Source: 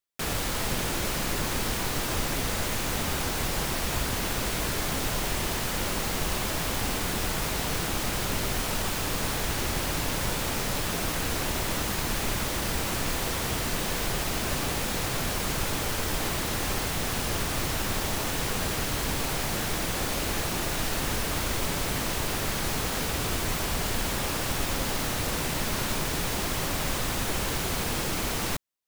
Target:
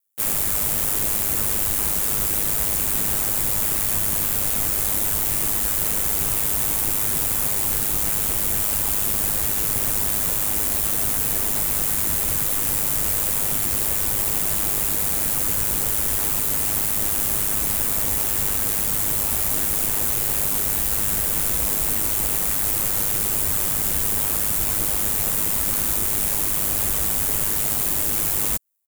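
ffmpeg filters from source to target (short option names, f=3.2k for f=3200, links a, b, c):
-filter_complex "[0:a]aeval=exprs='val(0)*sin(2*PI*51*n/s)':c=same,aexciter=amount=3.1:drive=9.1:freq=7.1k,asplit=3[a][b][c];[b]asetrate=29433,aresample=44100,atempo=1.49831,volume=-13dB[d];[c]asetrate=52444,aresample=44100,atempo=0.840896,volume=-5dB[e];[a][d][e]amix=inputs=3:normalize=0"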